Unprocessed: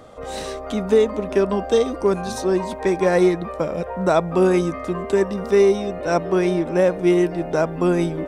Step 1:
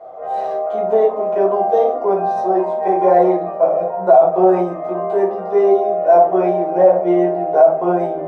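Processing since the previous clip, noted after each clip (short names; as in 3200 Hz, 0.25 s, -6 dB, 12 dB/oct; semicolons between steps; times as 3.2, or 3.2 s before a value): band-pass 700 Hz, Q 5.5; reverb RT60 0.40 s, pre-delay 5 ms, DRR -6.5 dB; maximiser +7.5 dB; gain -1 dB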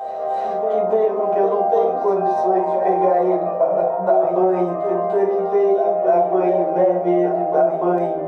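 compressor, threshold -13 dBFS, peak gain reduction 8 dB; on a send: reverse echo 0.295 s -7.5 dB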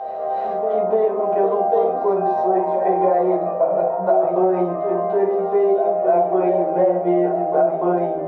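air absorption 200 m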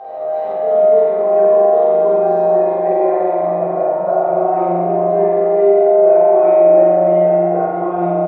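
tapped delay 47/615 ms -5.5/-11 dB; spring tank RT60 2.1 s, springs 40 ms, chirp 20 ms, DRR -5 dB; gain -4 dB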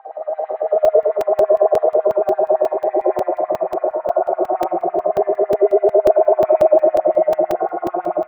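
LFO high-pass sine 9 Hz 350–2100 Hz; air absorption 480 m; crackling interface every 0.18 s, samples 128, zero, from 0.85; gain -4 dB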